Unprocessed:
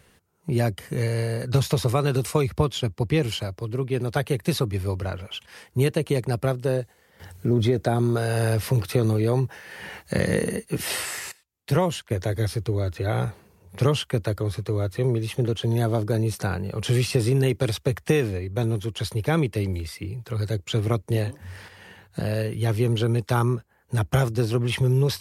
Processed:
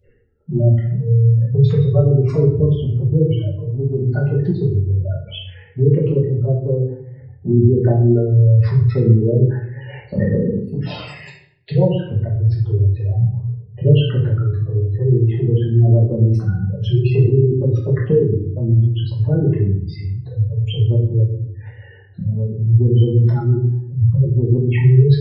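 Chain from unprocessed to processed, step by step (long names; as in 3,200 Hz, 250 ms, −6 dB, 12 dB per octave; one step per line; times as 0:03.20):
low-pass filter 4,500 Hz 12 dB per octave
gate on every frequency bin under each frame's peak −10 dB strong
phaser swept by the level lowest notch 170 Hz, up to 1,200 Hz, full sweep at −18.5 dBFS
rectangular room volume 110 cubic metres, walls mixed, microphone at 1.4 metres
level +2.5 dB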